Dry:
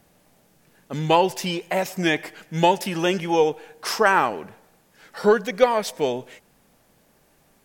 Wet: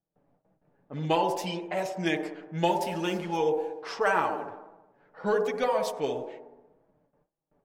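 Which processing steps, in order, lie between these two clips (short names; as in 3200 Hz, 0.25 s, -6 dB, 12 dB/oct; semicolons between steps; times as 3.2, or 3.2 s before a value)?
2.67–3.37 level-crossing sampler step -38.5 dBFS; on a send: band-limited delay 61 ms, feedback 68%, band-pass 510 Hz, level -4 dB; on the sum: low-pass opened by the level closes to 1000 Hz, open at -17 dBFS; flange 1.9 Hz, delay 6 ms, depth 1.2 ms, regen -24%; gate with hold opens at -54 dBFS; gain -5 dB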